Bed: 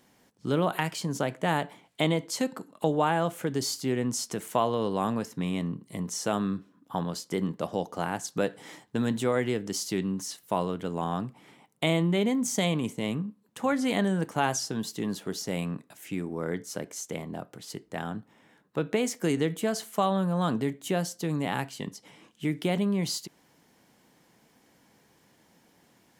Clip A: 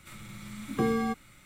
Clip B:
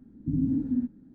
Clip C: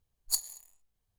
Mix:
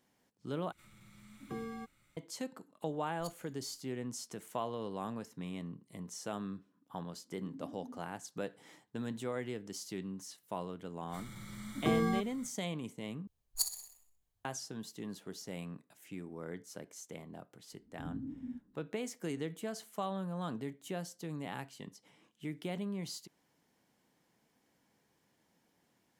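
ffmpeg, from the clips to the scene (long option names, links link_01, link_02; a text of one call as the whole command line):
ffmpeg -i bed.wav -i cue0.wav -i cue1.wav -i cue2.wav -filter_complex "[1:a]asplit=2[link_01][link_02];[3:a]asplit=2[link_03][link_04];[2:a]asplit=2[link_05][link_06];[0:a]volume=-12dB[link_07];[link_03]lowpass=frequency=3100:poles=1[link_08];[link_05]highpass=330[link_09];[link_02]asuperstop=centerf=2600:order=4:qfactor=4.1[link_10];[link_04]aecho=1:1:62|124|186|248|310:0.299|0.14|0.0659|0.031|0.0146[link_11];[link_07]asplit=3[link_12][link_13][link_14];[link_12]atrim=end=0.724[link_15];[link_01]atrim=end=1.45,asetpts=PTS-STARTPTS,volume=-15dB[link_16];[link_13]atrim=start=2.166:end=13.274[link_17];[link_11]atrim=end=1.18,asetpts=PTS-STARTPTS,volume=-3.5dB[link_18];[link_14]atrim=start=14.446[link_19];[link_08]atrim=end=1.18,asetpts=PTS-STARTPTS,volume=-13.5dB,afade=type=in:duration=0.004:curve=hsin,afade=type=out:start_time=1.176:duration=0.004:curve=hsin,adelay=2920[link_20];[link_09]atrim=end=1.14,asetpts=PTS-STARTPTS,volume=-16.5dB,afade=type=in:duration=0.004:curve=hsin,afade=type=out:start_time=1.136:duration=0.004:curve=hsin,adelay=7120[link_21];[link_10]atrim=end=1.45,asetpts=PTS-STARTPTS,volume=-3.5dB,afade=type=in:duration=0.05,afade=type=out:start_time=1.4:duration=0.05,adelay=11070[link_22];[link_06]atrim=end=1.14,asetpts=PTS-STARTPTS,volume=-16dB,afade=type=in:duration=0.004:curve=hsin,afade=type=out:start_time=1.136:duration=0.004:curve=hsin,adelay=17720[link_23];[link_15][link_16]acrossfade=duration=0.004:curve1=hsin:curve2=hsin[link_24];[link_24][link_17]acrossfade=duration=0.004:curve1=hsin:curve2=hsin[link_25];[link_25][link_18]acrossfade=duration=0.004:curve1=hsin:curve2=hsin[link_26];[link_26][link_19]acrossfade=duration=0.004:curve1=hsin:curve2=hsin[link_27];[link_27][link_20][link_21][link_22][link_23]amix=inputs=5:normalize=0" out.wav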